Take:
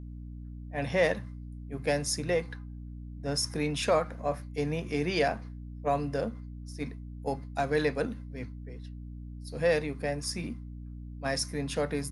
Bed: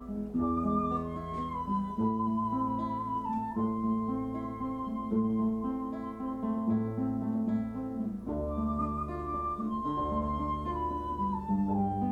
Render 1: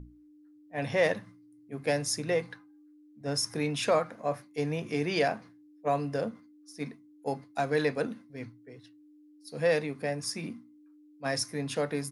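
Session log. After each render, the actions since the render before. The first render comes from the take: hum notches 60/120/180/240 Hz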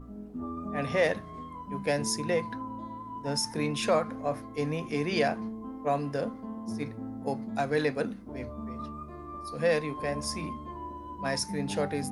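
add bed -7 dB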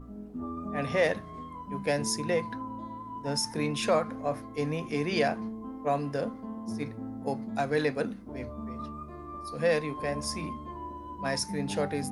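no audible change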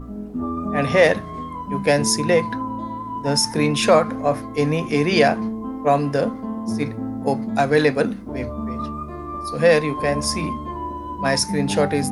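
trim +11 dB

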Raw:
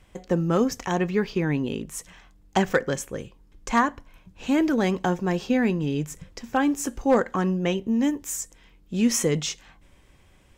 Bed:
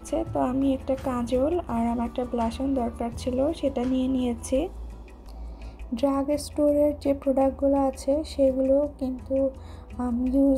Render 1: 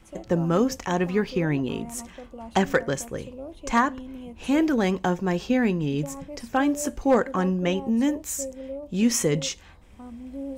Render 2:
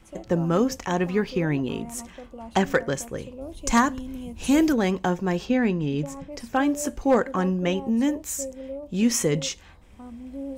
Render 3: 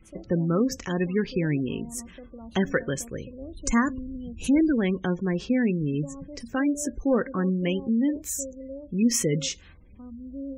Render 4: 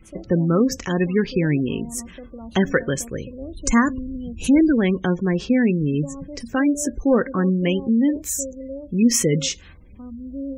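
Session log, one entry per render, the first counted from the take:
add bed -14 dB
3.41–4.73 s: tone controls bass +7 dB, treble +11 dB; 5.45–6.32 s: treble shelf 9.1 kHz -11 dB
spectral gate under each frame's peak -25 dB strong; peaking EQ 820 Hz -12.5 dB 0.86 oct
trim +5.5 dB

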